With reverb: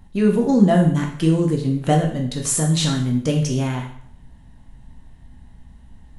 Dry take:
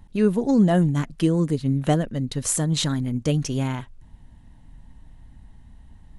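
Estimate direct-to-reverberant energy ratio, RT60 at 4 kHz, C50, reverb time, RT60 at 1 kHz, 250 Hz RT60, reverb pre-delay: 1.0 dB, 0.55 s, 7.0 dB, 0.60 s, 0.60 s, 0.60 s, 5 ms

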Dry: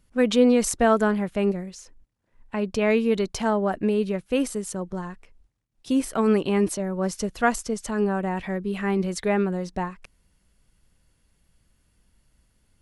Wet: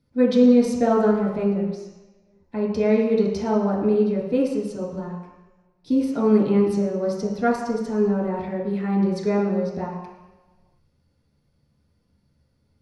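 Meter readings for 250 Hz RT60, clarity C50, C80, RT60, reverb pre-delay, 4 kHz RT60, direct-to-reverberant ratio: 1.0 s, 2.5 dB, 5.5 dB, 1.1 s, 3 ms, 1.3 s, −5.5 dB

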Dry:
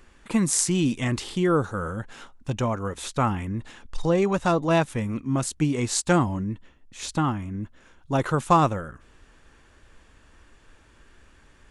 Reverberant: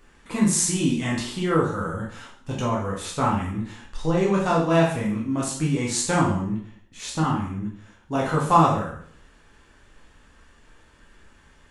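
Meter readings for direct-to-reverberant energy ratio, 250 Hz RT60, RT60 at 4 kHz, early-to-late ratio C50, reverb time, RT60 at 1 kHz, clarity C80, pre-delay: −4.0 dB, 0.60 s, 0.55 s, 4.0 dB, 0.60 s, 0.60 s, 8.5 dB, 5 ms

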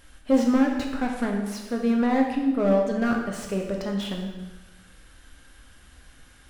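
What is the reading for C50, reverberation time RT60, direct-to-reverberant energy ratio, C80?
4.0 dB, 1.2 s, 0.5 dB, 6.0 dB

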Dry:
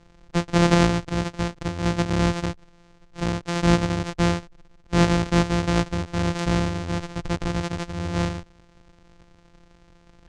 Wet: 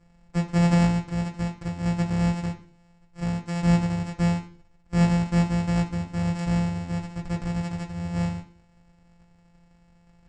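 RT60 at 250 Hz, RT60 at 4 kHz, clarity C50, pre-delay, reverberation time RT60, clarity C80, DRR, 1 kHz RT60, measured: 0.60 s, 0.50 s, 12.5 dB, 3 ms, 0.45 s, 18.0 dB, −1.5 dB, 0.40 s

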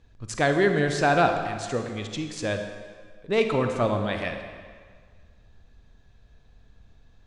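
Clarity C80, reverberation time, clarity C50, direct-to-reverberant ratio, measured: 7.5 dB, 1.7 s, 6.0 dB, 5.5 dB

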